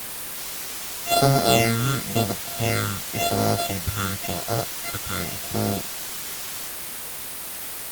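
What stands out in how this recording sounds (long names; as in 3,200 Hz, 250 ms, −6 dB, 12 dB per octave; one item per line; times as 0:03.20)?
a buzz of ramps at a fixed pitch in blocks of 64 samples
phaser sweep stages 8, 0.94 Hz, lowest notch 670–2,700 Hz
a quantiser's noise floor 6 bits, dither triangular
Opus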